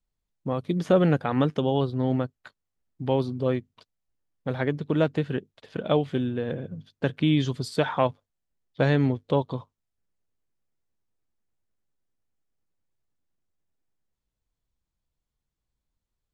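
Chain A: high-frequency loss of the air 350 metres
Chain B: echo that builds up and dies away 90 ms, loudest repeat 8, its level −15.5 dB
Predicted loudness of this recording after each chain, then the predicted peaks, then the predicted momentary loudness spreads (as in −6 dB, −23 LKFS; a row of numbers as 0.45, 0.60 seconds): −27.0, −26.0 LKFS; −10.0, −7.5 dBFS; 13, 14 LU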